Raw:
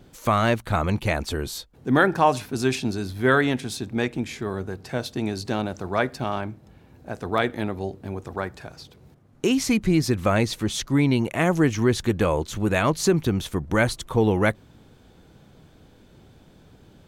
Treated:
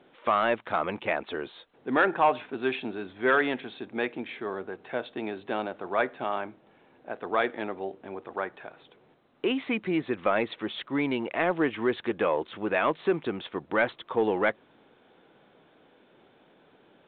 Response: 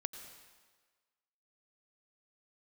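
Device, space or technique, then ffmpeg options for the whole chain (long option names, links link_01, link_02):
telephone: -af "highpass=370,lowpass=3300,asoftclip=type=tanh:threshold=-11dB,volume=-1dB" -ar 8000 -c:a pcm_alaw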